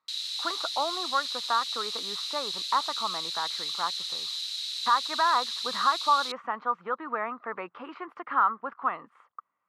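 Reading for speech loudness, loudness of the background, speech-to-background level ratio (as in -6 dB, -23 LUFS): -30.0 LUFS, -31.0 LUFS, 1.0 dB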